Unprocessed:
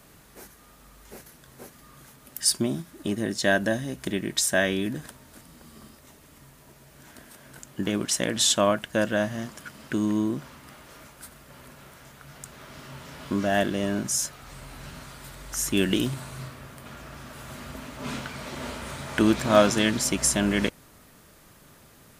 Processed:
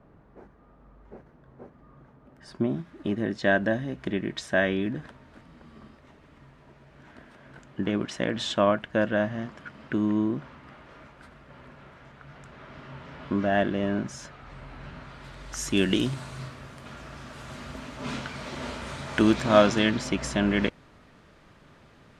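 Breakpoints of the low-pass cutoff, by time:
2.40 s 1 kHz
2.85 s 2.5 kHz
15.02 s 2.5 kHz
15.69 s 6.5 kHz
19.30 s 6.5 kHz
20.06 s 3.4 kHz

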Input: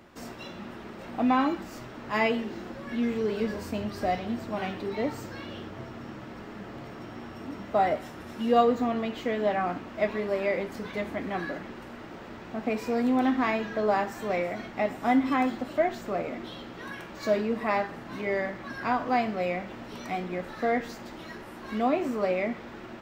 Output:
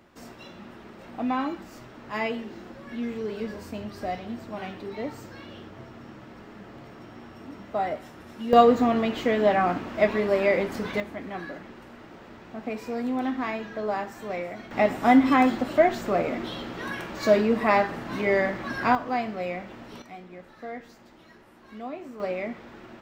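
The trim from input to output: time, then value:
-3.5 dB
from 8.53 s +5.5 dB
from 11.00 s -3.5 dB
from 14.71 s +6 dB
from 18.95 s -2 dB
from 20.02 s -11 dB
from 22.20 s -3 dB

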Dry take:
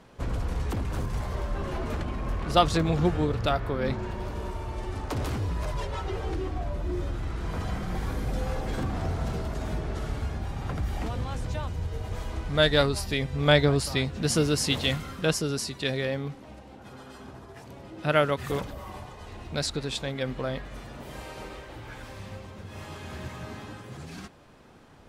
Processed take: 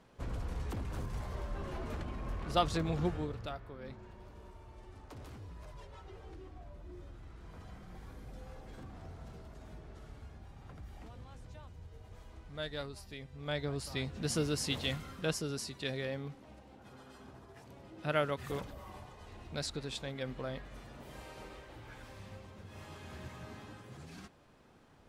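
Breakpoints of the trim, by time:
3.06 s -9 dB
3.66 s -19 dB
13.41 s -19 dB
14.08 s -9 dB

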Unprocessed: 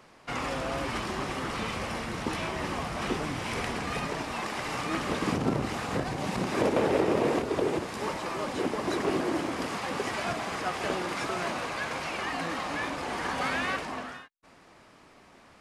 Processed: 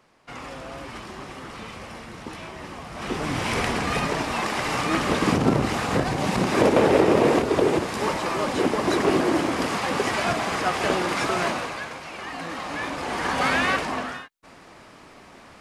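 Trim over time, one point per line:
2.84 s -5 dB
3.36 s +7.5 dB
11.45 s +7.5 dB
12.01 s -4 dB
13.50 s +8 dB

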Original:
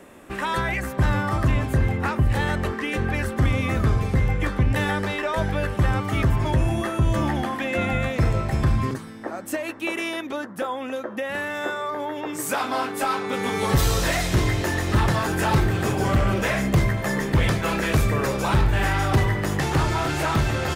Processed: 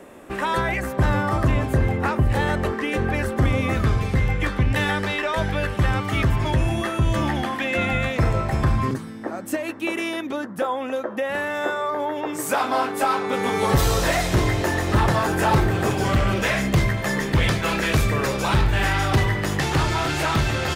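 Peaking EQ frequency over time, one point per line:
peaking EQ +4.5 dB 2 oct
530 Hz
from 3.73 s 3.1 kHz
from 8.17 s 960 Hz
from 8.88 s 200 Hz
from 10.59 s 680 Hz
from 15.91 s 3.6 kHz

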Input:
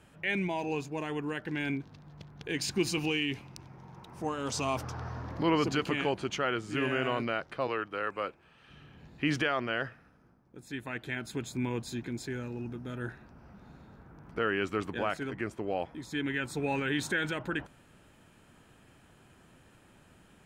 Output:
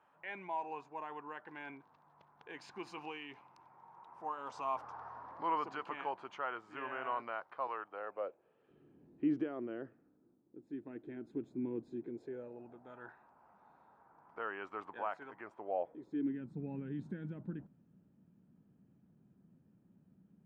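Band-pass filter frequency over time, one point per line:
band-pass filter, Q 2.9
7.71 s 970 Hz
8.94 s 320 Hz
11.88 s 320 Hz
13.03 s 920 Hz
15.54 s 920 Hz
16.48 s 190 Hz

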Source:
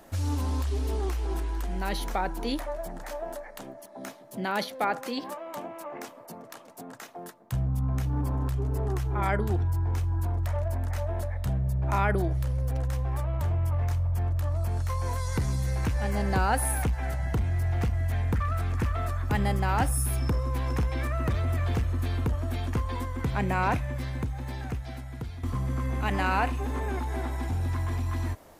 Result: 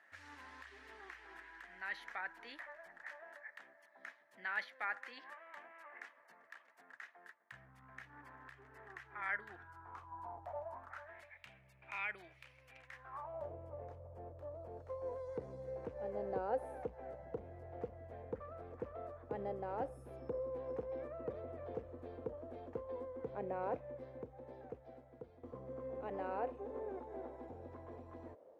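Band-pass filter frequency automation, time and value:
band-pass filter, Q 5
9.44 s 1.8 kHz
10.55 s 710 Hz
11.28 s 2.4 kHz
12.83 s 2.4 kHz
13.52 s 500 Hz

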